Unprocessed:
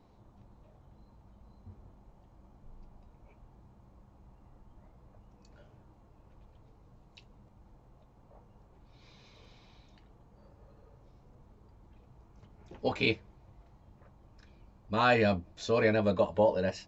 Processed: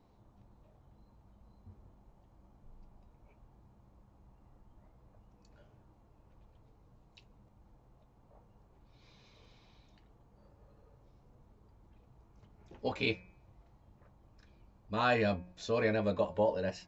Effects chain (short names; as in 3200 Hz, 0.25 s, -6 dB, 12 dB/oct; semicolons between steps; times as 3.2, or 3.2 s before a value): de-hum 180.9 Hz, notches 14; gain -4 dB